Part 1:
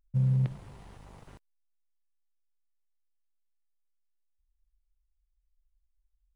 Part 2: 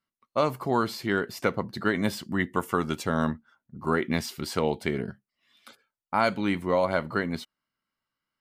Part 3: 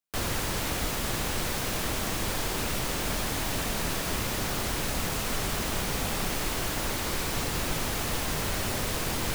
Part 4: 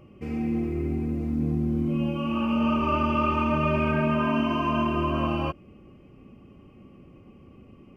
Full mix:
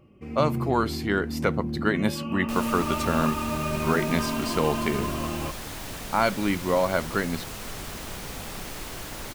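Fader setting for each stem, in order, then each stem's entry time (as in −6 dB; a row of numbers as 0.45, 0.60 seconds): −4.5, +1.0, −6.5, −5.0 decibels; 0.25, 0.00, 2.35, 0.00 seconds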